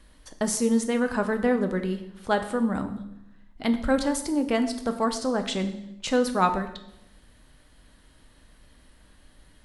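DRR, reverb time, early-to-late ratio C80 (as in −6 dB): 7.0 dB, 0.85 s, 13.5 dB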